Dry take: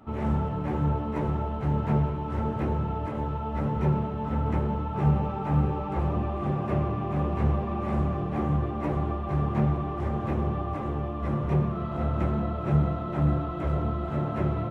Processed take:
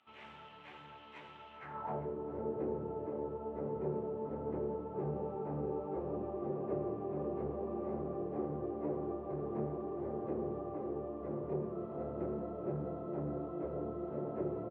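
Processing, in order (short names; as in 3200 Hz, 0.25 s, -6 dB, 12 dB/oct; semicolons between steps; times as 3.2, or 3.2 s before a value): soft clip -17 dBFS, distortion -20 dB; band-pass sweep 3000 Hz -> 430 Hz, 1.5–2.07; echo 0.395 s -17 dB; on a send at -14.5 dB: reverb, pre-delay 53 ms; on the sum: gain -1 dB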